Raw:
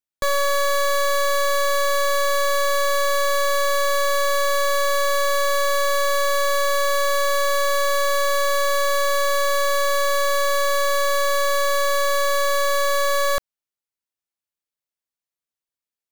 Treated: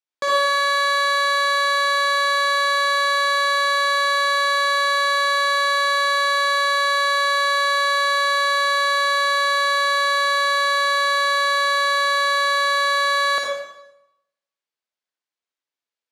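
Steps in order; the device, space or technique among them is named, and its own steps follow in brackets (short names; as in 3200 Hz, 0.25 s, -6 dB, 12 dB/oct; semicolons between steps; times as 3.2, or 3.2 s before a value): supermarket ceiling speaker (BPF 350–5500 Hz; reverb RT60 0.85 s, pre-delay 49 ms, DRR -2.5 dB)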